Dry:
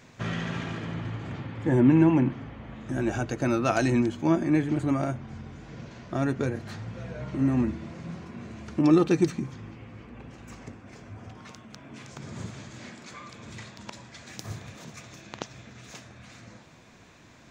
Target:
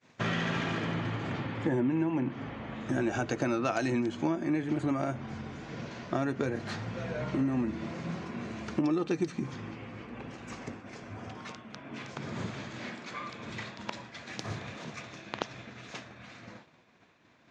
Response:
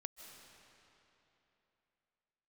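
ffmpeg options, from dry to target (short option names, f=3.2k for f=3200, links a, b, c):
-af "asetnsamples=n=441:p=0,asendcmd='11.52 lowpass f 4100',lowpass=6.6k,agate=range=-33dB:threshold=-44dB:ratio=3:detection=peak,highpass=f=210:p=1,acompressor=threshold=-31dB:ratio=8,volume=5dB"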